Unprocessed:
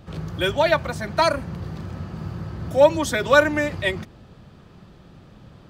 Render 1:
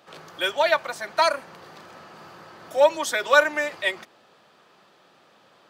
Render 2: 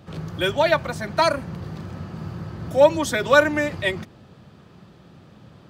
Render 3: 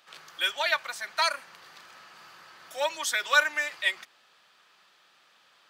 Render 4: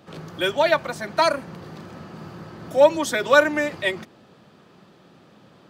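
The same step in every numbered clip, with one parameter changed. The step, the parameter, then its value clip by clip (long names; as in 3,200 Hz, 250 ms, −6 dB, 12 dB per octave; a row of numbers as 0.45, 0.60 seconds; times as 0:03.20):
high-pass filter, corner frequency: 590, 89, 1,500, 230 Hertz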